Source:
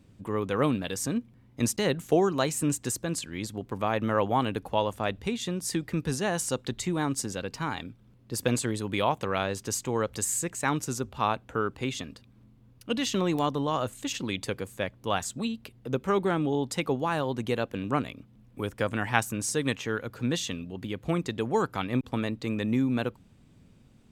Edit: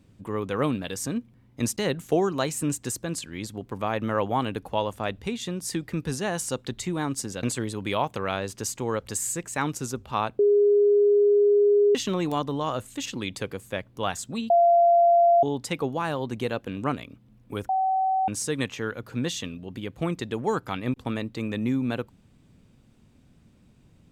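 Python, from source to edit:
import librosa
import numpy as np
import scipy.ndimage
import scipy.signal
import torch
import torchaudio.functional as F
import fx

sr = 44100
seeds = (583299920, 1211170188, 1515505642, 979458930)

y = fx.edit(x, sr, fx.cut(start_s=7.43, length_s=1.07),
    fx.bleep(start_s=11.46, length_s=1.56, hz=410.0, db=-15.5),
    fx.bleep(start_s=15.57, length_s=0.93, hz=688.0, db=-14.5),
    fx.bleep(start_s=18.76, length_s=0.59, hz=761.0, db=-20.5), tone=tone)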